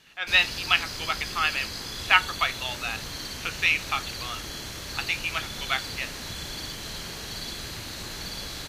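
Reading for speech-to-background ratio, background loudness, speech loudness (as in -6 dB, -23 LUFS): 8.0 dB, -34.0 LUFS, -26.0 LUFS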